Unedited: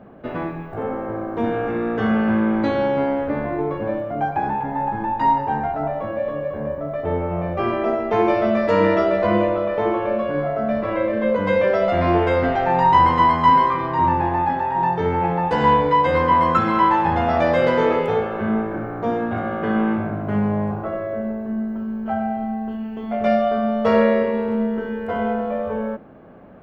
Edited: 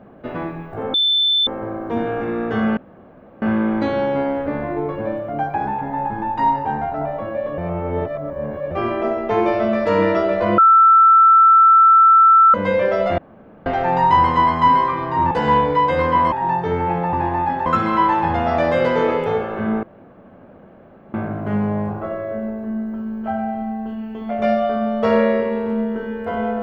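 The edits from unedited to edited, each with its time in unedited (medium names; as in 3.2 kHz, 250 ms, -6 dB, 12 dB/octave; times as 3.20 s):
0.94 s: add tone 3.53 kHz -13.5 dBFS 0.53 s
2.24 s: insert room tone 0.65 s
6.40–7.53 s: reverse
9.40–11.36 s: bleep 1.33 kHz -7 dBFS
12.00–12.48 s: room tone
14.13–14.66 s: swap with 15.47–16.48 s
18.65–19.96 s: room tone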